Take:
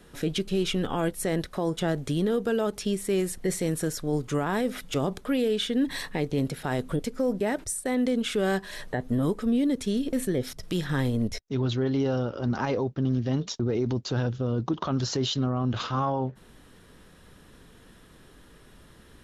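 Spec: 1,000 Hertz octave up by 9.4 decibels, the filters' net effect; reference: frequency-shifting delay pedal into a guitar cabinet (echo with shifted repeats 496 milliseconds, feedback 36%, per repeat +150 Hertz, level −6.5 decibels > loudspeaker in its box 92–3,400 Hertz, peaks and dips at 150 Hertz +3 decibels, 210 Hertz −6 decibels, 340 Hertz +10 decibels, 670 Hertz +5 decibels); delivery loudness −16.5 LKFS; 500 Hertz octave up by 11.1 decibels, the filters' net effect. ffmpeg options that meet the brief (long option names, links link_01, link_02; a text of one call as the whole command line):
ffmpeg -i in.wav -filter_complex "[0:a]equalizer=frequency=500:width_type=o:gain=8,equalizer=frequency=1000:width_type=o:gain=7,asplit=5[link_01][link_02][link_03][link_04][link_05];[link_02]adelay=496,afreqshift=150,volume=-6.5dB[link_06];[link_03]adelay=992,afreqshift=300,volume=-15.4dB[link_07];[link_04]adelay=1488,afreqshift=450,volume=-24.2dB[link_08];[link_05]adelay=1984,afreqshift=600,volume=-33.1dB[link_09];[link_01][link_06][link_07][link_08][link_09]amix=inputs=5:normalize=0,highpass=92,equalizer=frequency=150:width_type=q:width=4:gain=3,equalizer=frequency=210:width_type=q:width=4:gain=-6,equalizer=frequency=340:width_type=q:width=4:gain=10,equalizer=frequency=670:width_type=q:width=4:gain=5,lowpass=frequency=3400:width=0.5412,lowpass=frequency=3400:width=1.3066,volume=3dB" out.wav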